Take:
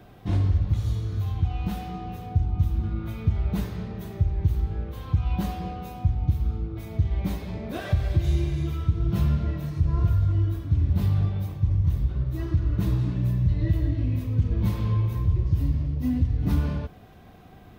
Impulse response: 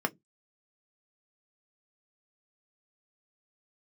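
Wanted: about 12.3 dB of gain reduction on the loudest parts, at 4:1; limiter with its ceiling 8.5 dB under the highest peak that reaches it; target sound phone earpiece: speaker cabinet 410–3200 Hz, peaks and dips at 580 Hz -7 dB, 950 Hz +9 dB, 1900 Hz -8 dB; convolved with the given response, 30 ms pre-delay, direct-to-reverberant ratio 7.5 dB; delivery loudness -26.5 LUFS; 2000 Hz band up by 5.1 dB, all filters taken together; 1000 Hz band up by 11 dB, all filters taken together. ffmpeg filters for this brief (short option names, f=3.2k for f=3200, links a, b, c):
-filter_complex "[0:a]equalizer=f=1k:t=o:g=9,equalizer=f=2k:t=o:g=7.5,acompressor=threshold=-32dB:ratio=4,alimiter=level_in=6dB:limit=-24dB:level=0:latency=1,volume=-6dB,asplit=2[a][b];[1:a]atrim=start_sample=2205,adelay=30[c];[b][c]afir=irnorm=-1:irlink=0,volume=-15.5dB[d];[a][d]amix=inputs=2:normalize=0,highpass=410,equalizer=f=580:t=q:w=4:g=-7,equalizer=f=950:t=q:w=4:g=9,equalizer=f=1.9k:t=q:w=4:g=-8,lowpass=f=3.2k:w=0.5412,lowpass=f=3.2k:w=1.3066,volume=18.5dB"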